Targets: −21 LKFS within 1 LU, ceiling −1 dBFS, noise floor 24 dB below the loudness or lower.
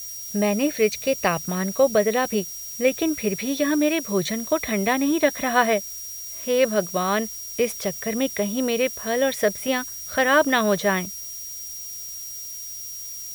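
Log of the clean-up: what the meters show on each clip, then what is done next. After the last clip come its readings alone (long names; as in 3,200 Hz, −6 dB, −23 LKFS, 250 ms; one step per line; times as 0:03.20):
interfering tone 5,700 Hz; level of the tone −35 dBFS; background noise floor −35 dBFS; target noise floor −48 dBFS; integrated loudness −23.5 LKFS; sample peak −5.5 dBFS; target loudness −21.0 LKFS
→ notch filter 5,700 Hz, Q 30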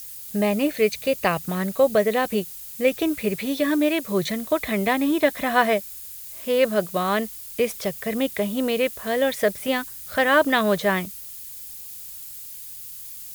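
interfering tone none found; background noise floor −38 dBFS; target noise floor −47 dBFS
→ broadband denoise 9 dB, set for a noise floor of −38 dBFS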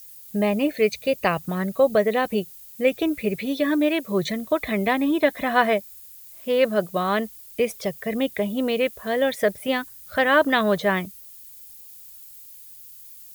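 background noise floor −45 dBFS; target noise floor −47 dBFS
→ broadband denoise 6 dB, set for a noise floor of −45 dBFS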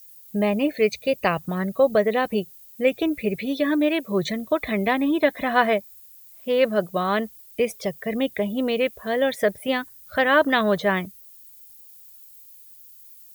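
background noise floor −48 dBFS; integrated loudness −23.0 LKFS; sample peak −5.5 dBFS; target loudness −21.0 LKFS
→ level +2 dB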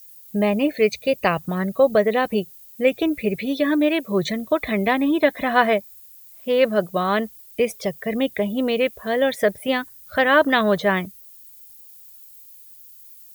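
integrated loudness −21.0 LKFS; sample peak −3.5 dBFS; background noise floor −46 dBFS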